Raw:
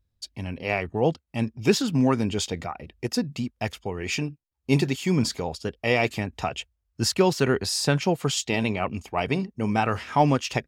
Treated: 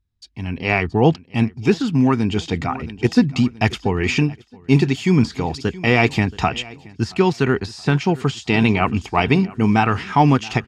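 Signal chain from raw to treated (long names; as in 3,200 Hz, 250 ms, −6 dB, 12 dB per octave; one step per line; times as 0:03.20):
parametric band 560 Hz −13.5 dB 0.37 octaves
de-essing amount 80%
high-frequency loss of the air 65 metres
repeating echo 675 ms, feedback 46%, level −21 dB
automatic gain control gain up to 17 dB
level −1 dB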